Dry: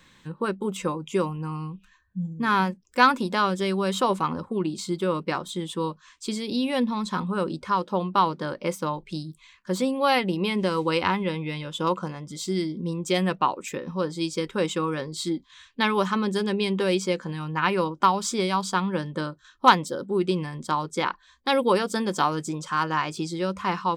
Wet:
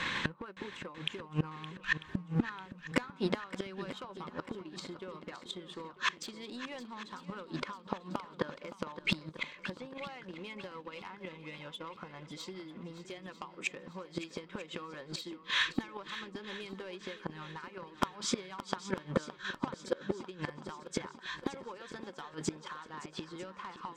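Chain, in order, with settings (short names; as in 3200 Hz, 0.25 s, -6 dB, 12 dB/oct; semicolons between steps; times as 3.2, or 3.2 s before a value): G.711 law mismatch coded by mu; LPF 2400 Hz 12 dB/oct; tilt +3 dB/oct; transient shaper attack +10 dB, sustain -4 dB; AGC; in parallel at -3 dB: limiter -11.5 dBFS, peak gain reduction 11 dB; on the sum: compressor 10:1, threshold -25 dBFS, peak gain reduction 19.5 dB; soft clip -21.5 dBFS, distortion -14 dB; flipped gate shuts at -28 dBFS, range -25 dB; on a send: swung echo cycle 0.945 s, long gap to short 1.5:1, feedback 47%, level -13.5 dB; on the sum: gain +10 dB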